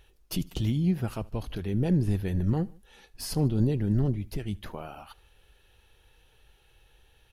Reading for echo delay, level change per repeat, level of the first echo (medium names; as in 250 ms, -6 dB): 75 ms, -4.5 dB, -24.0 dB